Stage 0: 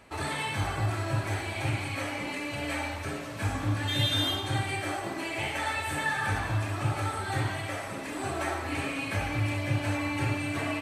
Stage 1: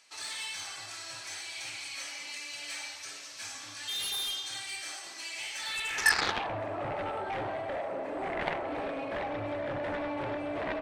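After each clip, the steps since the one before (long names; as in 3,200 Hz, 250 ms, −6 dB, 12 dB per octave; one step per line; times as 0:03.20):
band-pass filter sweep 5,600 Hz → 590 Hz, 0:05.59–0:06.55
harmonic generator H 7 −9 dB, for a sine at −21 dBFS
level +6 dB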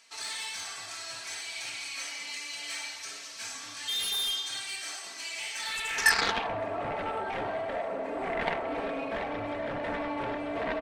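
comb filter 4.4 ms, depth 43%
level +1.5 dB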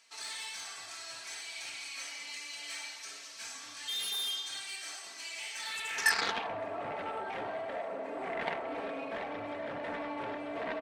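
high-pass filter 170 Hz 6 dB per octave
level −4.5 dB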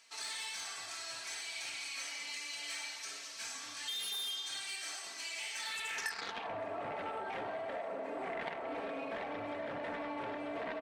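downward compressor 6 to 1, threshold −38 dBFS, peak gain reduction 15 dB
level +1 dB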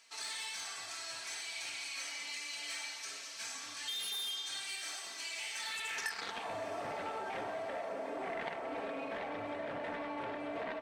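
feedback delay with all-pass diffusion 745 ms, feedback 58%, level −16 dB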